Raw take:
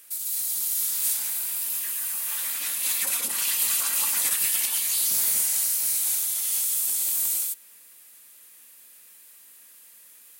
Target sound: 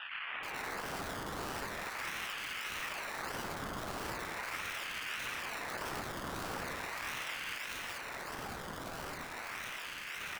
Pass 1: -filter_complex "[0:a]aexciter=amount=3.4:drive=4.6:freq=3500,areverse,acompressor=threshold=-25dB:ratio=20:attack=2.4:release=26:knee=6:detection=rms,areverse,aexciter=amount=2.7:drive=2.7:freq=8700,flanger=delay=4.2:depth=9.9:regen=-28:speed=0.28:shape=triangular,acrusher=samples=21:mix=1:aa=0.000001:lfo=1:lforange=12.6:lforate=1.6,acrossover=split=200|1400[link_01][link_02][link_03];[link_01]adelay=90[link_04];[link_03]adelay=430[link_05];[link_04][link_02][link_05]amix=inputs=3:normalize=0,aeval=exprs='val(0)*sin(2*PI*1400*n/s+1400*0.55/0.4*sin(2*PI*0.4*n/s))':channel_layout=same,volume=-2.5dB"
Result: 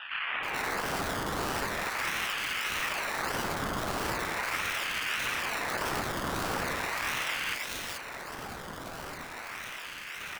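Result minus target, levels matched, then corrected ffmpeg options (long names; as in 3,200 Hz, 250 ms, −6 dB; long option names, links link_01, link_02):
downward compressor: peak gain reduction −8 dB
-filter_complex "[0:a]aexciter=amount=3.4:drive=4.6:freq=3500,areverse,acompressor=threshold=-33.5dB:ratio=20:attack=2.4:release=26:knee=6:detection=rms,areverse,aexciter=amount=2.7:drive=2.7:freq=8700,flanger=delay=4.2:depth=9.9:regen=-28:speed=0.28:shape=triangular,acrusher=samples=21:mix=1:aa=0.000001:lfo=1:lforange=12.6:lforate=1.6,acrossover=split=200|1400[link_01][link_02][link_03];[link_01]adelay=90[link_04];[link_03]adelay=430[link_05];[link_04][link_02][link_05]amix=inputs=3:normalize=0,aeval=exprs='val(0)*sin(2*PI*1400*n/s+1400*0.55/0.4*sin(2*PI*0.4*n/s))':channel_layout=same,volume=-2.5dB"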